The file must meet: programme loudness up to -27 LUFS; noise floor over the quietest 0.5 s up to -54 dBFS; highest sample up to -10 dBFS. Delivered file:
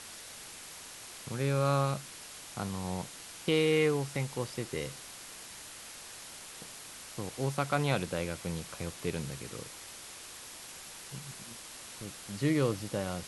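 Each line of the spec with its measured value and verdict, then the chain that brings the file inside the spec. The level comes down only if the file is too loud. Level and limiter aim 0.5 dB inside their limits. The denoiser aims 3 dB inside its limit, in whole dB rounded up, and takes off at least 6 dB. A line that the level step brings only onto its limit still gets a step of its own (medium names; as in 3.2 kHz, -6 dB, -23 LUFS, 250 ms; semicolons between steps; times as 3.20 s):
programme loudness -35.0 LUFS: pass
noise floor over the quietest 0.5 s -47 dBFS: fail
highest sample -15.0 dBFS: pass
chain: noise reduction 10 dB, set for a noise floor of -47 dBFS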